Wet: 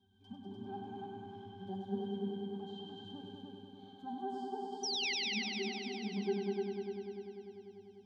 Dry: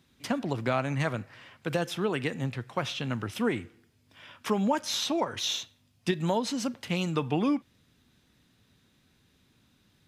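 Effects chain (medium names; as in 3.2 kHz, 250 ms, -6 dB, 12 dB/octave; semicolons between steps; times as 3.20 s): gliding tape speed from 98% -> 152%; treble shelf 2.4 kHz +10.5 dB; compression 6:1, threshold -35 dBFS, peak gain reduction 15 dB; harmonic-percussive split percussive -17 dB; static phaser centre 500 Hz, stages 6; pitch-class resonator G, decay 0.36 s; vibrato 15 Hz 31 cents; painted sound fall, 4.83–5.13 s, 1.9–6.1 kHz -55 dBFS; multi-head delay 99 ms, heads all three, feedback 68%, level -6 dB; on a send at -16 dB: reverberation RT60 4.1 s, pre-delay 118 ms; on the sum: trim +17.5 dB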